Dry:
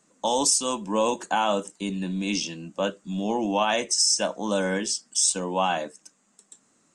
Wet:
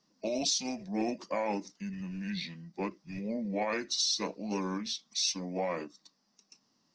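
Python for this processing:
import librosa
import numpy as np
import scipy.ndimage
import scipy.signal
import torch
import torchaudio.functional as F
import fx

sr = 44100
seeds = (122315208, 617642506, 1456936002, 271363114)

y = fx.formant_shift(x, sr, semitones=-6)
y = fx.end_taper(y, sr, db_per_s=480.0)
y = y * librosa.db_to_amplitude(-8.5)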